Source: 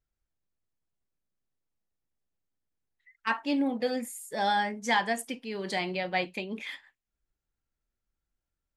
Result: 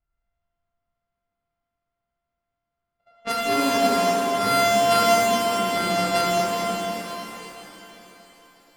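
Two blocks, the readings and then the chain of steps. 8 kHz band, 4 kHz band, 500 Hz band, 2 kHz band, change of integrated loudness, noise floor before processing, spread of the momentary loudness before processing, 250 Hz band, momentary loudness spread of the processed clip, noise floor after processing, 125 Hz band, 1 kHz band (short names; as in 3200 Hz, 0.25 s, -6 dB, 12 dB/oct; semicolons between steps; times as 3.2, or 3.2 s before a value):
+14.0 dB, +10.5 dB, +13.0 dB, +5.0 dB, +9.5 dB, under -85 dBFS, 10 LU, +5.5 dB, 16 LU, -83 dBFS, +10.5 dB, +10.0 dB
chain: sample sorter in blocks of 64 samples; low-pass opened by the level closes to 2500 Hz, open at -24 dBFS; shimmer reverb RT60 3.7 s, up +7 st, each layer -8 dB, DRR -7 dB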